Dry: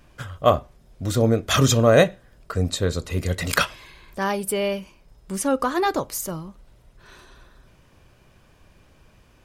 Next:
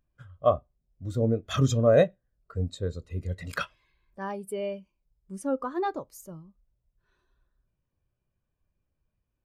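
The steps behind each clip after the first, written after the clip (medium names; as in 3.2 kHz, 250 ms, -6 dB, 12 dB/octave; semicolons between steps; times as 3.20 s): spectral contrast expander 1.5:1; trim -6 dB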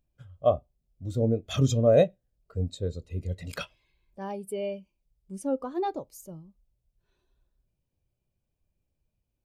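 high-order bell 1.4 kHz -8.5 dB 1.1 oct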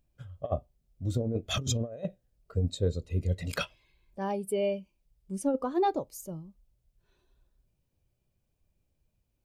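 compressor with a negative ratio -27 dBFS, ratio -0.5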